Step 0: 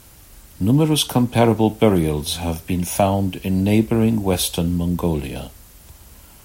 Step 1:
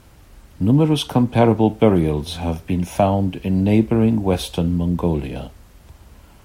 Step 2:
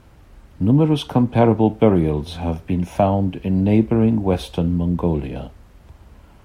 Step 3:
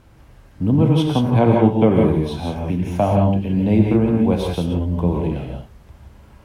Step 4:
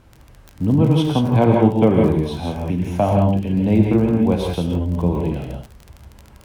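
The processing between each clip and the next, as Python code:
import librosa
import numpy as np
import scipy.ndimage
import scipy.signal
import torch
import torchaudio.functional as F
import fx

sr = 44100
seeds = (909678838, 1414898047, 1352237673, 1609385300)

y1 = fx.lowpass(x, sr, hz=2100.0, slope=6)
y1 = F.gain(torch.from_numpy(y1), 1.0).numpy()
y2 = fx.high_shelf(y1, sr, hz=3700.0, db=-10.0)
y3 = fx.rev_gated(y2, sr, seeds[0], gate_ms=200, shape='rising', drr_db=0.5)
y3 = F.gain(torch.from_numpy(y3), -2.0).numpy()
y4 = fx.dmg_crackle(y3, sr, seeds[1], per_s=42.0, level_db=-28.0)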